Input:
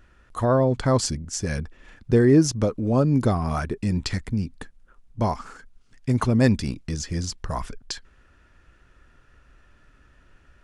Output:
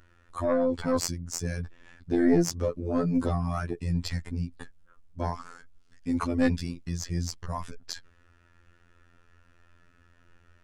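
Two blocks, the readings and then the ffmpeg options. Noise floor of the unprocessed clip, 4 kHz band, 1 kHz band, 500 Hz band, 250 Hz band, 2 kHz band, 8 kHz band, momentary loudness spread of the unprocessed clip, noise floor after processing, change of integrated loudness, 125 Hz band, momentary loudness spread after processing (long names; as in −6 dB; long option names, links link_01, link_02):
−58 dBFS, −5.5 dB, −6.5 dB, −5.5 dB, −5.0 dB, −5.0 dB, −5.0 dB, 16 LU, −62 dBFS, −6.0 dB, −8.5 dB, 15 LU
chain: -af "afftfilt=real='hypot(re,im)*cos(PI*b)':imag='0':win_size=2048:overlap=0.75,aeval=exprs='(tanh(3.55*val(0)+0.7)-tanh(0.7))/3.55':channel_layout=same,volume=3.5dB"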